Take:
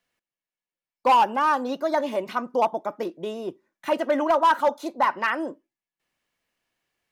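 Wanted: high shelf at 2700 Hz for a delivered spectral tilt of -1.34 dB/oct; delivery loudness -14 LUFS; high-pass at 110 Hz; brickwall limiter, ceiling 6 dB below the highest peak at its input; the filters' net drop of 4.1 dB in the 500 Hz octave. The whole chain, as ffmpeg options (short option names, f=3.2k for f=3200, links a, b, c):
-af "highpass=110,equalizer=f=500:t=o:g=-5.5,highshelf=f=2.7k:g=4,volume=14.5dB,alimiter=limit=-2.5dB:level=0:latency=1"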